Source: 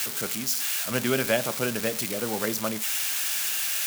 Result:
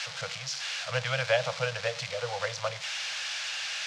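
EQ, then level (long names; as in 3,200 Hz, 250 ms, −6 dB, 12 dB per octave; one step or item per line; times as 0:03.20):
Chebyshev band-stop filter 170–480 Hz, order 5
low-pass filter 5,300 Hz 24 dB per octave
0.0 dB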